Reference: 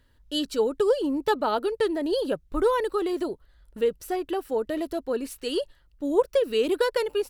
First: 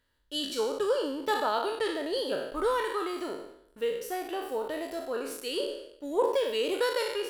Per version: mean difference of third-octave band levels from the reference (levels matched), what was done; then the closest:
7.5 dB: peak hold with a decay on every bin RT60 0.84 s
low-shelf EQ 300 Hz −11.5 dB
in parallel at −5 dB: dead-zone distortion −46 dBFS
on the sum: level −7.5 dB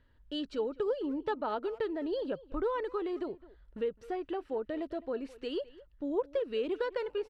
4.5 dB: low-pass filter 2,900 Hz 12 dB per octave
downward compressor 1.5 to 1, threshold −36 dBFS, peak gain reduction 7.5 dB
far-end echo of a speakerphone 210 ms, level −18 dB
level −3.5 dB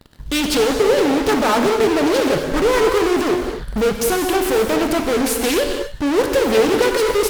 13.5 dB: in parallel at −5 dB: fuzz pedal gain 49 dB, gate −57 dBFS
on the sum: reverb whose tail is shaped and stops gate 290 ms flat, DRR 3 dB
highs frequency-modulated by the lows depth 0.38 ms
level −1.5 dB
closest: second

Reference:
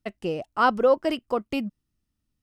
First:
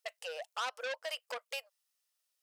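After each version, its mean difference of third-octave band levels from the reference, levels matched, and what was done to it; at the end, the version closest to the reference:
13.0 dB: high-shelf EQ 2,700 Hz +12 dB
downward compressor 4 to 1, threshold −27 dBFS, peak gain reduction 12 dB
linear-phase brick-wall high-pass 470 Hz
saturating transformer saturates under 3,400 Hz
level −4 dB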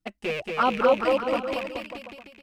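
8.5 dB: loose part that buzzes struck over −40 dBFS, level −18 dBFS
dynamic equaliser 1,400 Hz, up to +5 dB, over −35 dBFS, Q 2.2
flanger swept by the level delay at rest 6.2 ms, full sweep at −14.5 dBFS
on a send: bouncing-ball delay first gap 230 ms, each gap 0.85×, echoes 5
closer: second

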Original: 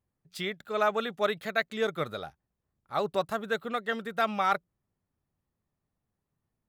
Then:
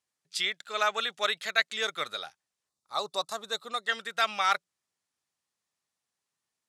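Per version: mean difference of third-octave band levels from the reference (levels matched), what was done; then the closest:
7.0 dB: meter weighting curve ITU-R 468
gain on a spectral selection 0:02.69–0:03.87, 1,300–3,500 Hz −10 dB
level −1 dB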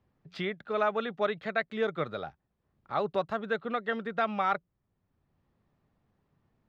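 4.0 dB: high-frequency loss of the air 220 metres
multiband upward and downward compressor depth 40%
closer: second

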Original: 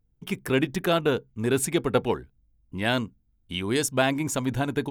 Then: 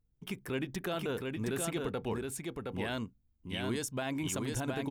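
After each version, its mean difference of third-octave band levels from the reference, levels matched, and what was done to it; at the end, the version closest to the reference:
5.5 dB: brickwall limiter −19.5 dBFS, peak gain reduction 10.5 dB
single-tap delay 718 ms −3.5 dB
level −6.5 dB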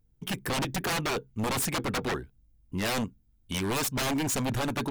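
8.5 dB: high-shelf EQ 4,900 Hz +4 dB
wave folding −25.5 dBFS
level +2 dB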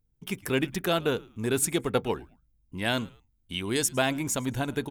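2.5 dB: high-shelf EQ 4,100 Hz +6.5 dB
echo with shifted repeats 109 ms, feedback 31%, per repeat −99 Hz, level −23 dB
level −3.5 dB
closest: third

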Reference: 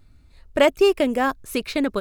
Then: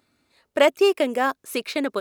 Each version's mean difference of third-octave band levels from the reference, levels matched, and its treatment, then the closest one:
2.5 dB: high-pass filter 310 Hz 12 dB per octave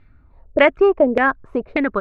7.5 dB: auto-filter low-pass saw down 1.7 Hz 500–2,300 Hz
level +1.5 dB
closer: first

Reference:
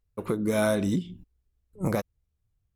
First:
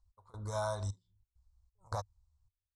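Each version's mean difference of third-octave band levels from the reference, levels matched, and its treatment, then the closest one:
10.0 dB: downward compressor, threshold −27 dBFS, peak gain reduction 7.5 dB
gate pattern "x..xxxxx....xx" 133 BPM −24 dB
drawn EQ curve 100 Hz 0 dB, 160 Hz −24 dB, 330 Hz −27 dB, 970 Hz +3 dB, 2,600 Hz −30 dB, 4,100 Hz −3 dB, 8,300 Hz −4 dB, 13,000 Hz −29 dB
level +4.5 dB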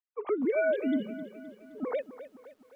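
13.5 dB: three sine waves on the formant tracks
downward compressor 1.5 to 1, threshold −30 dBFS, peak gain reduction 4 dB
feedback echo at a low word length 260 ms, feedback 55%, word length 10 bits, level −13.5 dB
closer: first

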